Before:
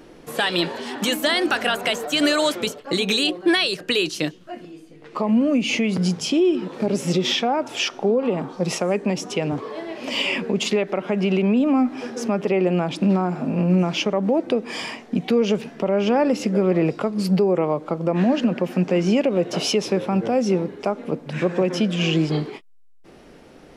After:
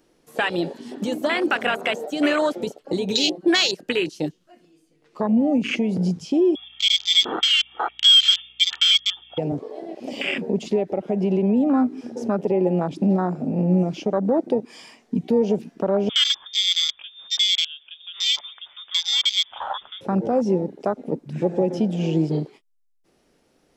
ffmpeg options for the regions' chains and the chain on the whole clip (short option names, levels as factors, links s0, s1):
-filter_complex "[0:a]asettb=1/sr,asplit=3[s0][s1][s2];[s0]atrim=end=6.554[s3];[s1]atrim=start=6.55:end=9.38,asetpts=PTS-STARTPTS,afade=t=in:d=0.004:c=qsin,afade=t=out:st=2.826:d=0.004:c=qsin,aecho=1:1:2.1:0.73,atrim=end_sample=124803,lowpass=f=3100:t=q:w=0.5098,lowpass=f=3100:t=q:w=0.6013,lowpass=f=3100:t=q:w=0.9,lowpass=f=3100:t=q:w=2.563,afreqshift=-3700,aeval=exprs='val(0)+0.00355*(sin(2*PI*60*n/s)+sin(2*PI*2*60*n/s)/2+sin(2*PI*3*60*n/s)/3+sin(2*PI*4*60*n/s)/4+sin(2*PI*5*60*n/s)/5)':c=same[s4];[s2]atrim=start=9.376[s5];[s3][s4]acrossfade=d=0.004:c1=hsin:c2=qsin[s6];[s6][s5]acrossfade=d=0.004:c1=qsin:c2=hsin,asettb=1/sr,asplit=3[s7][s8][s9];[s7]atrim=end=16.094[s10];[s8]atrim=start=16.09:end=20.01,asetpts=PTS-STARTPTS,afade=t=in:d=0.004:c=qsin,afade=t=out:st=3.916:d=0.004:c=qsin,aemphasis=mode=production:type=riaa,lowpass=f=3200:t=q:w=0.5098,lowpass=f=3200:t=q:w=0.6013,lowpass=f=3200:t=q:w=0.9,lowpass=f=3200:t=q:w=2.563,afreqshift=-3800[s11];[s9]atrim=start=20.006[s12];[s10][s11]acrossfade=d=0.004:c1=hsin:c2=qsin[s13];[s13][s12]acrossfade=d=0.004:c1=qsin:c2=hsin,acrossover=split=6200[s14][s15];[s15]acompressor=threshold=0.00794:ratio=4:attack=1:release=60[s16];[s14][s16]amix=inputs=2:normalize=0,afwtdn=0.0794,bass=f=250:g=-1,treble=f=4000:g=9"